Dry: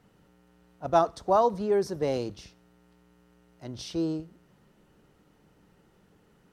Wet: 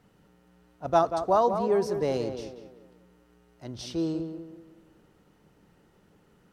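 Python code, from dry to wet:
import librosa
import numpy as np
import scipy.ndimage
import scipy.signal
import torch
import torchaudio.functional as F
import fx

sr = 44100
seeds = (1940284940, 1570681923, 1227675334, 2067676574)

y = fx.echo_tape(x, sr, ms=188, feedback_pct=43, wet_db=-7, lp_hz=1900.0, drive_db=5.0, wow_cents=20)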